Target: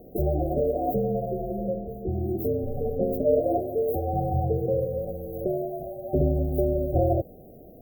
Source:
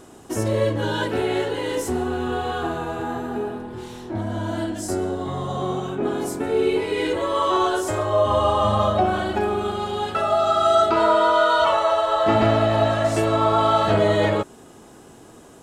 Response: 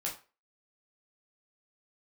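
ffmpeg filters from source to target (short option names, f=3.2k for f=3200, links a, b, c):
-af "afftfilt=real='re*(1-between(b*sr/4096,530,7300))':imag='im*(1-between(b*sr/4096,530,7300))':win_size=4096:overlap=0.75,asetrate=88200,aresample=44100,afreqshift=-290"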